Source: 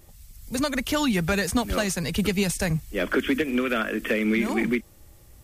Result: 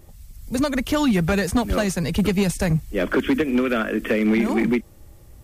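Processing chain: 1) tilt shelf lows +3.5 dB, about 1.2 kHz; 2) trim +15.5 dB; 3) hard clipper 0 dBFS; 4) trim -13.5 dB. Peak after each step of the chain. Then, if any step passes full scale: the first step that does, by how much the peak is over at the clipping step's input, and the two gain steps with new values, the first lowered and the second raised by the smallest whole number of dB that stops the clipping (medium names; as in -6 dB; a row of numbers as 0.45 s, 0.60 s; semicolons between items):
-11.0 dBFS, +4.5 dBFS, 0.0 dBFS, -13.5 dBFS; step 2, 4.5 dB; step 2 +10.5 dB, step 4 -8.5 dB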